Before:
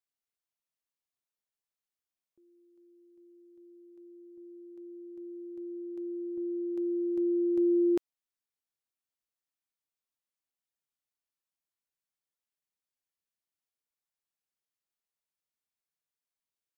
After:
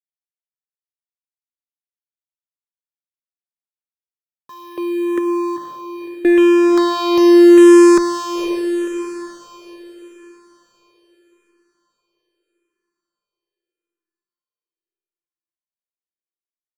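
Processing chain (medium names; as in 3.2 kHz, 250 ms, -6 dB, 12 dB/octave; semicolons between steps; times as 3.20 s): high-pass 460 Hz 24 dB/octave; 4.49–6.25 s: compressor with a negative ratio -54 dBFS, ratio -0.5; fuzz box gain 50 dB, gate -54 dBFS; echo that smears into a reverb 516 ms, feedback 46%, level -5.5 dB; barber-pole phaser -0.8 Hz; trim +5.5 dB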